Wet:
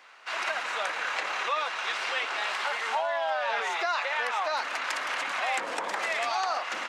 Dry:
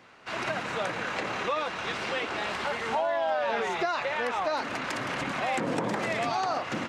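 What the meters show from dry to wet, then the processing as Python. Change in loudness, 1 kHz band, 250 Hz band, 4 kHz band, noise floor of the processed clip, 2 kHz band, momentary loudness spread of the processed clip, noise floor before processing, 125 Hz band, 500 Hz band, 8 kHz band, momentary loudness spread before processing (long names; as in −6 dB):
+0.5 dB, +0.5 dB, −16.0 dB, +3.0 dB, −35 dBFS, +3.0 dB, 2 LU, −37 dBFS, below −25 dB, −4.0 dB, +3.0 dB, 4 LU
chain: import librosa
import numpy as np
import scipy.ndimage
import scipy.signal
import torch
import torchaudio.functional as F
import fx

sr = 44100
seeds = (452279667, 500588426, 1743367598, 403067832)

y = scipy.signal.sosfilt(scipy.signal.butter(2, 840.0, 'highpass', fs=sr, output='sos'), x)
y = F.gain(torch.from_numpy(y), 3.0).numpy()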